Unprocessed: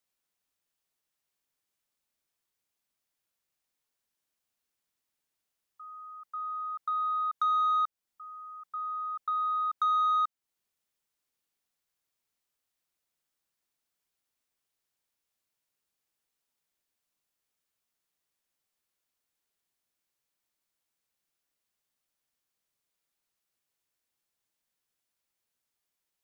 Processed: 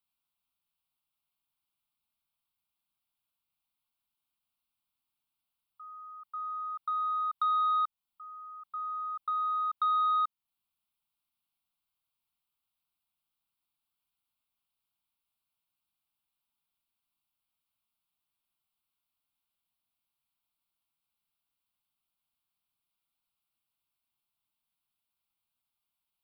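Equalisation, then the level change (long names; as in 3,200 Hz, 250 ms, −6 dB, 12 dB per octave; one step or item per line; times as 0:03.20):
phaser with its sweep stopped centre 1,800 Hz, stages 6
0.0 dB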